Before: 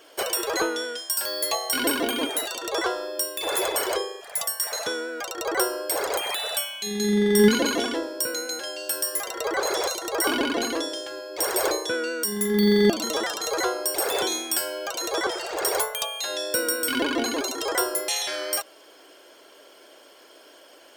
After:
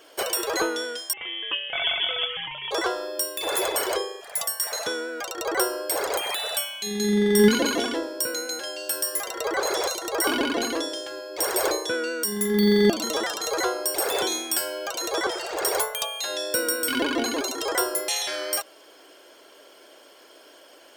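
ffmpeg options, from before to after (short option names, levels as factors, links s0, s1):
-filter_complex "[0:a]asettb=1/sr,asplit=3[s0][s1][s2];[s0]atrim=end=1.134[s3];[s1]atrim=start=1.13:end=2.71,asetpts=PTS-STARTPTS,afade=t=in:d=0.004:c=qsin,afade=t=out:st=1.576:d=0.004:c=qsin,lowpass=f=3100:t=q:w=0.5098,lowpass=f=3100:t=q:w=0.6013,lowpass=f=3100:t=q:w=0.9,lowpass=f=3100:t=q:w=2.563,afreqshift=-3700[s4];[s2]atrim=start=2.706[s5];[s3][s4]acrossfade=d=0.004:c1=hsin:c2=qsin[s6];[s6][s5]acrossfade=d=0.004:c1=qsin:c2=hsin"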